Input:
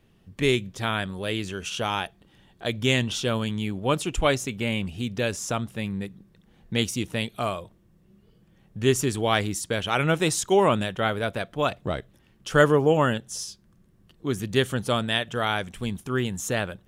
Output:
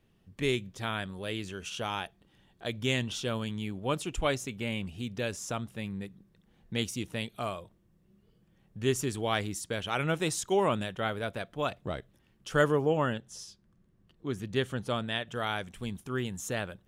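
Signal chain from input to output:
0:12.86–0:15.29: high-shelf EQ 6,600 Hz −9.5 dB
level −7 dB

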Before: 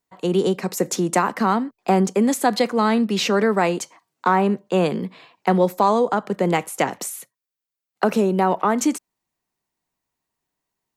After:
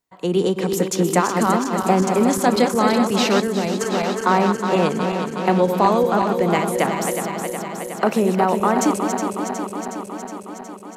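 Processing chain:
feedback delay that plays each chunk backwards 183 ms, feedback 84%, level −6.5 dB
0:03.40–0:03.81: parametric band 1,200 Hz −11.5 dB 2.7 octaves

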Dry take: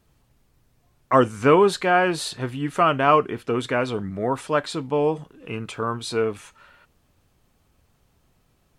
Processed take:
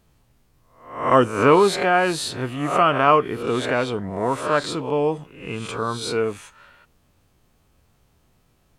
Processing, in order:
peak hold with a rise ahead of every peak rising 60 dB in 0.55 s

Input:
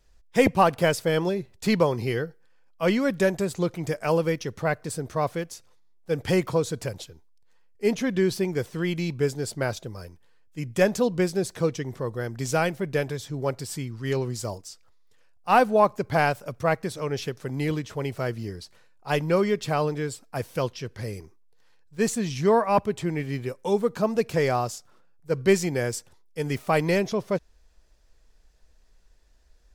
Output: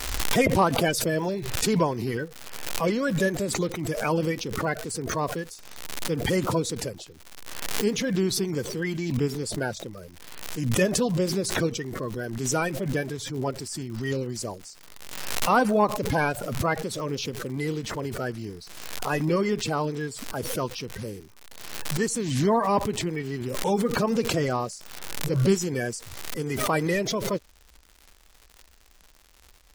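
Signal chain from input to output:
spectral magnitudes quantised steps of 30 dB
surface crackle 170 per second −38 dBFS
background raised ahead of every attack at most 42 dB per second
level −2 dB

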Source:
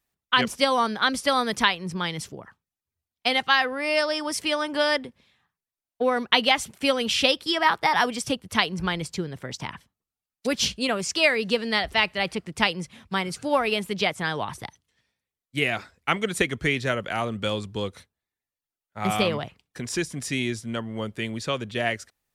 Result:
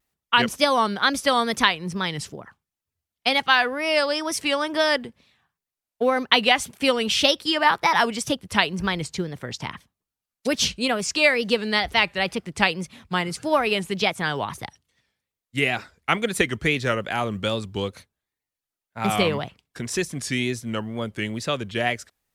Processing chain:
tape wow and flutter 110 cents
floating-point word with a short mantissa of 6 bits
level +2 dB

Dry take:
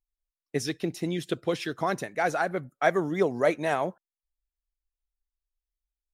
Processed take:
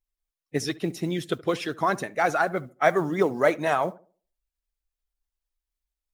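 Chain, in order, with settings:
spectral magnitudes quantised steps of 15 dB
noise that follows the level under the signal 35 dB
tape delay 71 ms, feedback 37%, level −18.5 dB, low-pass 1,300 Hz
dynamic equaliser 1,200 Hz, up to +5 dB, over −42 dBFS, Q 1.7
level +2 dB

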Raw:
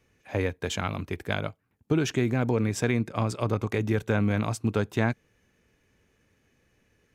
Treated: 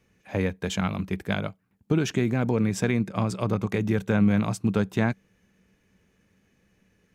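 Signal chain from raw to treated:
parametric band 190 Hz +14 dB 0.22 octaves

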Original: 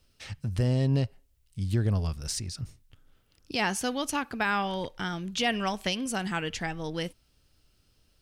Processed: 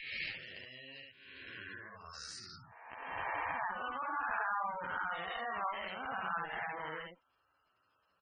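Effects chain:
peak hold with a rise ahead of every peak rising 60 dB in 1.58 s
downward compressor 16 to 1, threshold −31 dBFS, peak gain reduction 13 dB
ambience of single reflections 60 ms −9.5 dB, 71 ms −4 dB
band-pass filter sweep 2,300 Hz → 1,100 Hz, 0:01.28–0:02.60
harmonic generator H 2 −24 dB, 7 −39 dB, 8 −19 dB, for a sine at −27.5 dBFS
gate on every frequency bin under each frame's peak −15 dB strong
high-shelf EQ 3,200 Hz +8.5 dB
level +3 dB

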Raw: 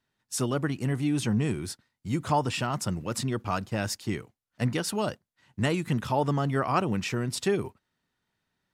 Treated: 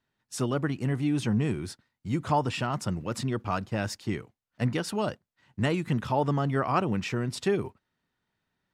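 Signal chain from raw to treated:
high-shelf EQ 6,100 Hz −9.5 dB

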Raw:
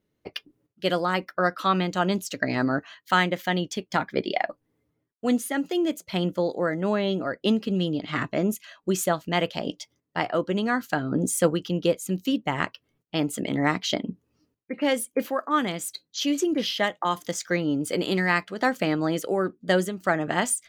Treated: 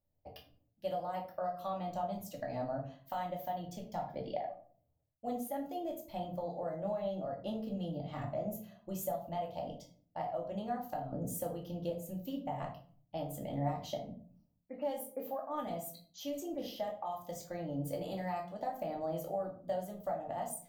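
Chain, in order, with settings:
drawn EQ curve 100 Hz 0 dB, 170 Hz −12 dB, 390 Hz −18 dB, 700 Hz +2 dB, 1,400 Hz −22 dB, 10,000 Hz −14 dB, 14,000 Hz +1 dB
downward compressor 4 to 1, threshold −33 dBFS, peak gain reduction 10.5 dB
rectangular room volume 410 cubic metres, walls furnished, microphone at 2.4 metres
level −5 dB

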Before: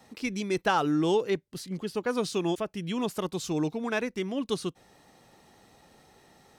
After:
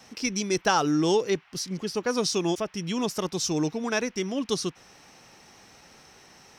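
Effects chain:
noise in a band 750–2,900 Hz −62 dBFS
parametric band 5,600 Hz +14 dB 0.44 octaves
level +2 dB

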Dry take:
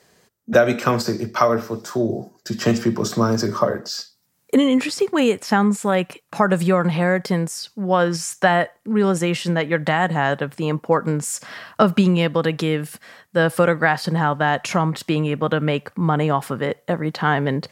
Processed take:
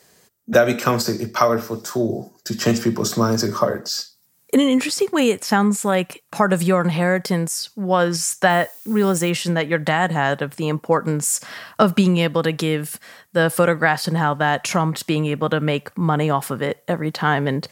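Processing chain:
0:08.49–0:09.29: background noise blue −50 dBFS
high-shelf EQ 6,600 Hz +10 dB

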